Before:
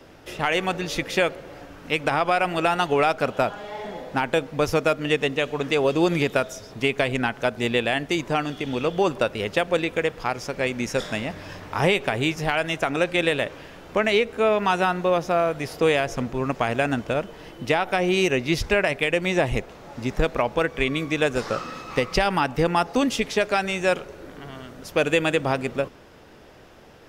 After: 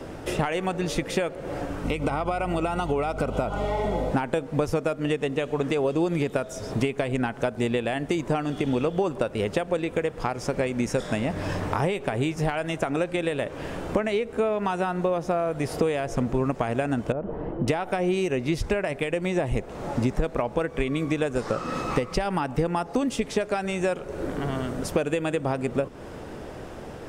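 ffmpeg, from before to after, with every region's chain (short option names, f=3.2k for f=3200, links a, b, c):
-filter_complex "[0:a]asettb=1/sr,asplit=3[a][b][c];[a]atrim=end=1.844[d];[b]atrim=start=1.84:end=4.11,asetpts=PTS-STARTPTS,afade=t=in:d=0.004:c=qsin,afade=t=out:st=2.266:d=0.004:c=qsin,acompressor=threshold=-29dB:ratio=2.5:attack=3.2:release=140:knee=1:detection=peak,aeval=exprs='val(0)+0.00891*(sin(2*PI*50*n/s)+sin(2*PI*2*50*n/s)/2+sin(2*PI*3*50*n/s)/3+sin(2*PI*4*50*n/s)/4+sin(2*PI*5*50*n/s)/5)':c=same,asuperstop=centerf=1700:order=20:qfactor=6.2[e];[c]atrim=start=4.106[f];[d][e]acrossfade=d=0.004:c1=hsin:c2=qsin[g];[g][f]acrossfade=d=0.004:c1=qsin:c2=hsin,asettb=1/sr,asplit=3[h][i][j];[h]atrim=end=17.124[k];[i]atrim=start=17.12:end=17.68,asetpts=PTS-STARTPTS,afade=t=in:d=0.004:c=qsin,afade=t=out:st=0.556:d=0.004:c=qsin,lowpass=1k,acompressor=threshold=-32dB:ratio=2.5:attack=3.2:release=140:knee=1:detection=peak[l];[j]atrim=start=17.676[m];[k][l]acrossfade=d=0.004:c1=hsin:c2=qsin[n];[n][m]acrossfade=d=0.004:c1=qsin:c2=hsin,equalizer=f=8.6k:w=1.7:g=10,acompressor=threshold=-32dB:ratio=10,tiltshelf=f=1.5k:g=5.5,volume=6.5dB"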